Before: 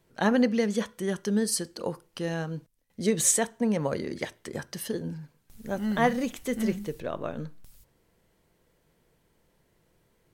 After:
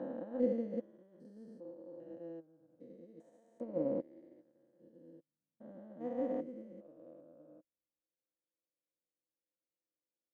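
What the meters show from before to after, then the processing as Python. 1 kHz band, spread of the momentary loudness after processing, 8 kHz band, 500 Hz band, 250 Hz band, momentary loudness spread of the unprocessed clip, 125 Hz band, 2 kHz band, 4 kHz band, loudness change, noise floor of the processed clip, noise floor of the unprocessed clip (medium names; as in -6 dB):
-21.0 dB, 23 LU, under -40 dB, -10.5 dB, -14.0 dB, 14 LU, -21.0 dB, under -30 dB, under -35 dB, -11.5 dB, under -85 dBFS, -69 dBFS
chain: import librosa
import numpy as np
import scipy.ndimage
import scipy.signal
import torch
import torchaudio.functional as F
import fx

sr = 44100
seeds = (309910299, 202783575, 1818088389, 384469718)

y = fx.spec_steps(x, sr, hold_ms=400)
y = fx.double_bandpass(y, sr, hz=410.0, octaves=0.72)
y = fx.upward_expand(y, sr, threshold_db=-55.0, expansion=2.5)
y = F.gain(torch.from_numpy(y), 7.5).numpy()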